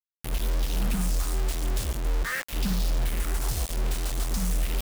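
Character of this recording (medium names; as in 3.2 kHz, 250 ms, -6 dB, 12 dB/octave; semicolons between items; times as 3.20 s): phasing stages 4, 0.45 Hz, lowest notch 190–1600 Hz; a quantiser's noise floor 6-bit, dither none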